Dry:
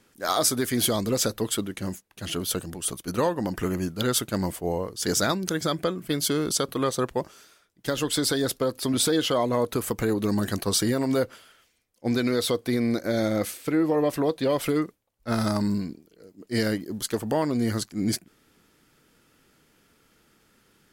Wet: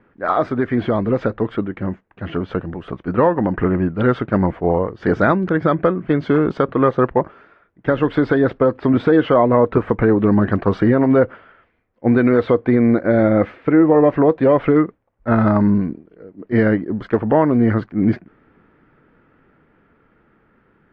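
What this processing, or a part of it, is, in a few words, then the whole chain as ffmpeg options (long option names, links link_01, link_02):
action camera in a waterproof case: -af "lowpass=frequency=1900:width=0.5412,lowpass=frequency=1900:width=1.3066,dynaudnorm=framelen=650:gausssize=9:maxgain=3dB,volume=7.5dB" -ar 44100 -c:a aac -b:a 48k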